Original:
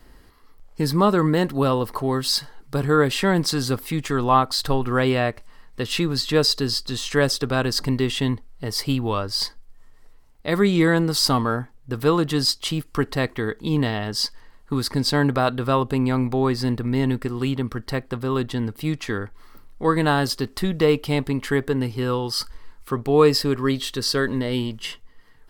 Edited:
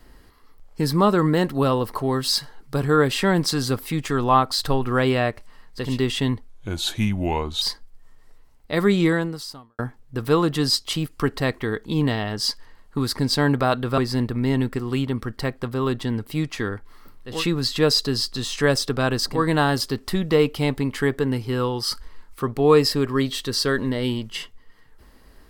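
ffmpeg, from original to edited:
-filter_complex "[0:a]asplit=8[s0][s1][s2][s3][s4][s5][s6][s7];[s0]atrim=end=5.99[s8];[s1]atrim=start=7.75:end=8.494[s9];[s2]atrim=start=8.49:end=9.37,asetpts=PTS-STARTPTS,asetrate=34398,aresample=44100[s10];[s3]atrim=start=9.366:end=11.54,asetpts=PTS-STARTPTS,afade=t=out:st=1.404:d=0.77:c=qua[s11];[s4]atrim=start=11.54:end=15.732,asetpts=PTS-STARTPTS,afade=t=in:d=0.004:c=hsin[s12];[s5]atrim=start=16.468:end=19.95[s13];[s6]atrim=start=5.75:end=7.99[s14];[s7]atrim=start=19.71[s15];[s8][s9]acrossfade=d=0.24:c1=tri:c2=tri[s16];[s16][s10]acrossfade=d=0.004:c1=hsin:c2=hsin[s17];[s11][s12]concat=n=2:v=0:a=1[s18];[s17][s18]acrossfade=d=0.004:c1=hsin:c2=hsin[s19];[s19][s13]acrossfade=d=0.004:c1=hsin:c2=hsin[s20];[s20][s14]acrossfade=d=0.24:c1=tri:c2=tri[s21];[s21][s15]acrossfade=d=0.24:c1=tri:c2=tri"

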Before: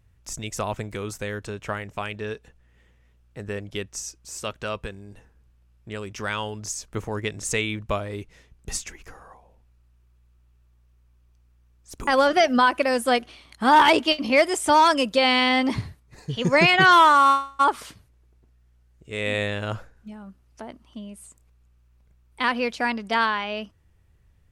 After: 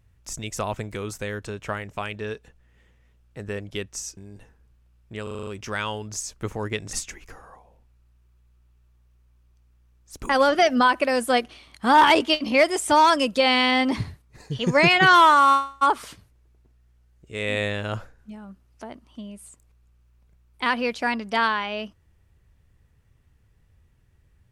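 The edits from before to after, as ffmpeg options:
-filter_complex "[0:a]asplit=9[s0][s1][s2][s3][s4][s5][s6][s7][s8];[s0]atrim=end=4.172[s9];[s1]atrim=start=4.928:end=6.032[s10];[s2]atrim=start=5.988:end=6.032[s11];[s3]atrim=start=5.988:end=6.032[s12];[s4]atrim=start=5.988:end=6.032[s13];[s5]atrim=start=5.988:end=6.032[s14];[s6]atrim=start=5.988:end=6.032[s15];[s7]atrim=start=5.988:end=7.452[s16];[s8]atrim=start=8.708[s17];[s9][s10]acrossfade=d=0.004:c1=hsin:c2=hsin[s18];[s18][s11]acrossfade=d=0.004:c1=hsin:c2=hsin[s19];[s19][s12]acrossfade=d=0.004:c1=hsin:c2=hsin[s20];[s20][s13]acrossfade=d=0.004:c1=hsin:c2=hsin[s21];[s21][s14]acrossfade=d=0.004:c1=hsin:c2=hsin[s22];[s22][s15]acrossfade=d=0.004:c1=hsin:c2=hsin[s23];[s23][s16]acrossfade=d=0.004:c1=hsin:c2=hsin[s24];[s24][s17]acrossfade=d=0.004:c1=hsin:c2=hsin"

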